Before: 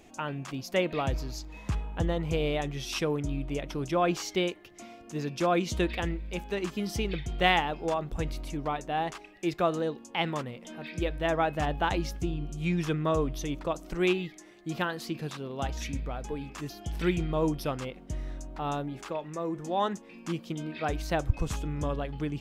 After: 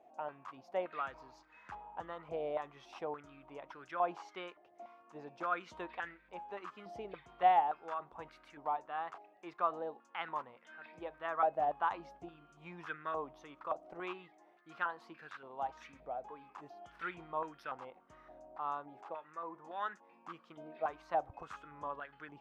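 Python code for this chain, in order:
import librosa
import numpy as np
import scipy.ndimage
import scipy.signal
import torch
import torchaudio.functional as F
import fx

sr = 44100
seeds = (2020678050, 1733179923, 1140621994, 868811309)

y = fx.filter_held_bandpass(x, sr, hz=3.5, low_hz=700.0, high_hz=1500.0)
y = y * librosa.db_to_amplitude(1.5)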